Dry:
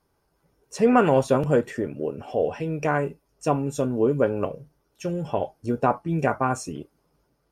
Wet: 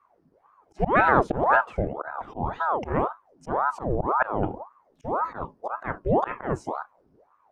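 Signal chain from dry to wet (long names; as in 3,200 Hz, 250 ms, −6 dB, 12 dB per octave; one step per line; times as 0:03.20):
volume swells 134 ms
RIAA equalisation playback
ring modulator whose carrier an LFO sweeps 680 Hz, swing 70%, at 1.9 Hz
level −2 dB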